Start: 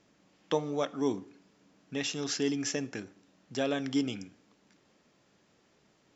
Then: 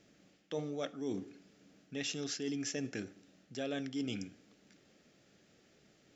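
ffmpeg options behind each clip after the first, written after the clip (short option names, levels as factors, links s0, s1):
-af "equalizer=f=990:t=o:w=0.41:g=-14,areverse,acompressor=threshold=0.0141:ratio=5,areverse,volume=1.19"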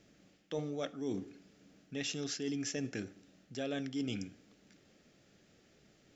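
-af "lowshelf=f=78:g=8.5"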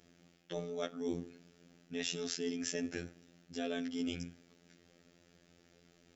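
-af "afftfilt=real='hypot(re,im)*cos(PI*b)':imag='0':win_size=2048:overlap=0.75,volume=1.5"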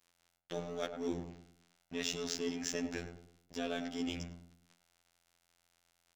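-filter_complex "[0:a]aeval=exprs='sgn(val(0))*max(abs(val(0))-0.00266,0)':c=same,asplit=2[s0][s1];[s1]adelay=103,lowpass=f=840:p=1,volume=0.501,asplit=2[s2][s3];[s3]adelay=103,lowpass=f=840:p=1,volume=0.42,asplit=2[s4][s5];[s5]adelay=103,lowpass=f=840:p=1,volume=0.42,asplit=2[s6][s7];[s7]adelay=103,lowpass=f=840:p=1,volume=0.42,asplit=2[s8][s9];[s9]adelay=103,lowpass=f=840:p=1,volume=0.42[s10];[s0][s2][s4][s6][s8][s10]amix=inputs=6:normalize=0,volume=1.19"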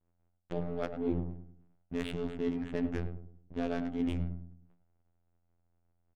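-af "aresample=8000,aresample=44100,aemphasis=mode=reproduction:type=bsi,adynamicsmooth=sensitivity=7.5:basefreq=700,volume=1.19"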